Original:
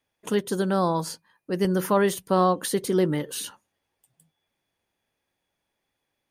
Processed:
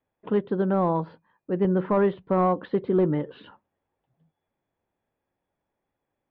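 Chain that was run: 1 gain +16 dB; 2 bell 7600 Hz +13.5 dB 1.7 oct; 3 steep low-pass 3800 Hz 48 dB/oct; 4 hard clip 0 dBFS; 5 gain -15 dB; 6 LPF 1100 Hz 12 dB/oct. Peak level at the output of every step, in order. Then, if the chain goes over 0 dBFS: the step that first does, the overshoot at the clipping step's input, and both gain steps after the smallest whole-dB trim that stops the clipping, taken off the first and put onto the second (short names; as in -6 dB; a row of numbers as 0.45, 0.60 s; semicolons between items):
+6.5, +8.5, +7.5, 0.0, -15.0, -14.5 dBFS; step 1, 7.5 dB; step 1 +8 dB, step 5 -7 dB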